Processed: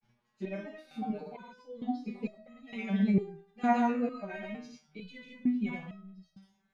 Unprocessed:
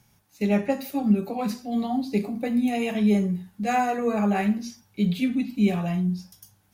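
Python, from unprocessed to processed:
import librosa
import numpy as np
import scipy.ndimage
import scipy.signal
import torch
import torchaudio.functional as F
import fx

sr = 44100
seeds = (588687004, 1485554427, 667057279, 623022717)

y = scipy.signal.sosfilt(scipy.signal.butter(2, 3300.0, 'lowpass', fs=sr, output='sos'), x)
y = y + 0.9 * np.pad(y, (int(4.9 * sr / 1000.0), 0))[:len(y)]
y = fx.wow_flutter(y, sr, seeds[0], rate_hz=2.1, depth_cents=100.0)
y = fx.granulator(y, sr, seeds[1], grain_ms=100.0, per_s=20.0, spray_ms=100.0, spread_st=0)
y = fx.resonator_held(y, sr, hz=2.2, low_hz=120.0, high_hz=640.0)
y = F.gain(torch.from_numpy(y), 3.5).numpy()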